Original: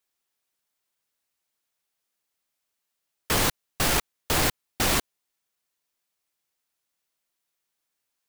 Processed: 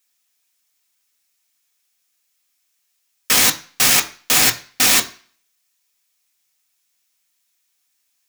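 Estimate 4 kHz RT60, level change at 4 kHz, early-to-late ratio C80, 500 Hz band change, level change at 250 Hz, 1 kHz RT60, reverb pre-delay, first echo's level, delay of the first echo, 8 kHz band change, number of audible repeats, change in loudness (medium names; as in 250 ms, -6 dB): 0.45 s, +11.0 dB, 20.0 dB, 0.0 dB, +2.0 dB, 0.45 s, 3 ms, no echo, no echo, +13.0 dB, no echo, +11.0 dB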